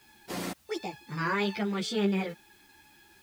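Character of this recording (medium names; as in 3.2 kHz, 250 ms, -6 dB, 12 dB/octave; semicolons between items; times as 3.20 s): a quantiser's noise floor 10-bit, dither triangular; a shimmering, thickened sound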